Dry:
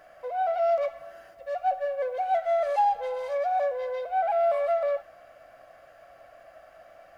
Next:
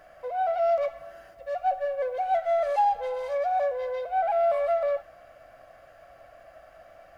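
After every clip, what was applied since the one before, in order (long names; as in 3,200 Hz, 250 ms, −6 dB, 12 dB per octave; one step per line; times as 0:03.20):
low-shelf EQ 130 Hz +8.5 dB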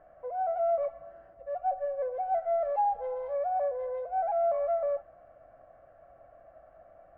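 low-pass filter 1,000 Hz 12 dB per octave
level −3 dB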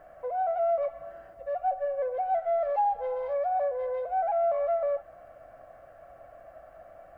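high-shelf EQ 2,100 Hz +10.5 dB
in parallel at +1.5 dB: downward compressor, threshold −35 dBFS, peak gain reduction 12 dB
on the sum: level −2.5 dB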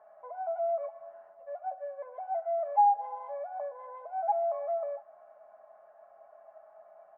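resonant band-pass 900 Hz, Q 3.3
comb filter 4.8 ms, depth 78%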